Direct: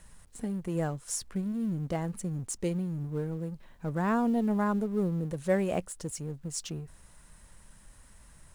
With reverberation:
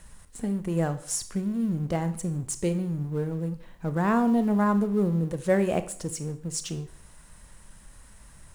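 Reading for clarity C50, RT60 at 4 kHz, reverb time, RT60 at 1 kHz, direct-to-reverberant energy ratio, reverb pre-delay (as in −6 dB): 13.5 dB, 0.50 s, 0.55 s, 0.55 s, 10.5 dB, 25 ms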